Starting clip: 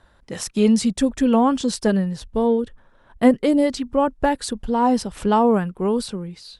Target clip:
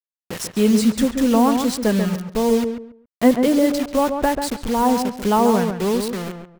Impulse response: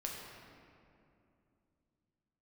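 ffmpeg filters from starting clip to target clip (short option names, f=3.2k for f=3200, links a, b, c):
-filter_complex "[0:a]acrusher=bits=4:mix=0:aa=0.000001,asplit=2[a][b];[b]adelay=138,lowpass=f=1.6k:p=1,volume=-6dB,asplit=2[c][d];[d]adelay=138,lowpass=f=1.6k:p=1,volume=0.25,asplit=2[e][f];[f]adelay=138,lowpass=f=1.6k:p=1,volume=0.25[g];[a][c][e][g]amix=inputs=4:normalize=0"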